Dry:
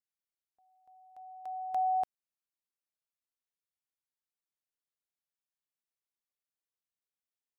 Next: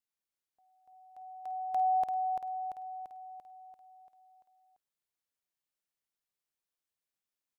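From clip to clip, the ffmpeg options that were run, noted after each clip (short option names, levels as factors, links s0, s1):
-af "aecho=1:1:341|682|1023|1364|1705|2046|2387|2728:0.596|0.334|0.187|0.105|0.0586|0.0328|0.0184|0.0103"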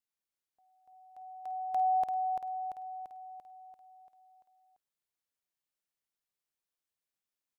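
-af anull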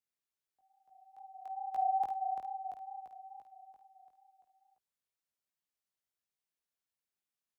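-af "afreqshift=20,flanger=delay=16:depth=5.9:speed=2.3"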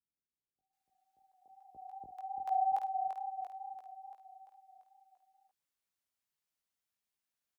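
-filter_complex "[0:a]acrossover=split=450[s0][s1];[s1]adelay=730[s2];[s0][s2]amix=inputs=2:normalize=0,volume=1.19"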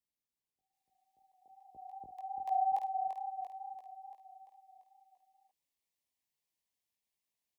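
-af "asuperstop=centerf=1400:order=4:qfactor=2.2"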